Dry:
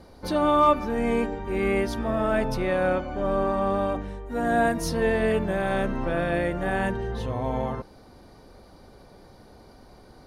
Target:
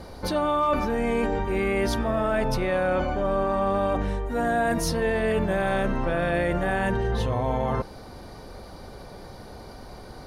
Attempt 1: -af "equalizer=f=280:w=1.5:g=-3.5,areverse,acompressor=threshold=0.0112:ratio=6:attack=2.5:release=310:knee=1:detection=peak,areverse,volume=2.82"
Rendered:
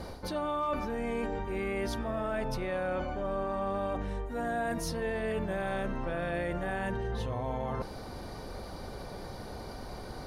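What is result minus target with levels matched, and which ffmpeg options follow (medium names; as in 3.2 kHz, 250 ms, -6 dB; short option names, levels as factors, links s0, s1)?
compression: peak gain reduction +9 dB
-af "equalizer=f=280:w=1.5:g=-3.5,areverse,acompressor=threshold=0.0376:ratio=6:attack=2.5:release=310:knee=1:detection=peak,areverse,volume=2.82"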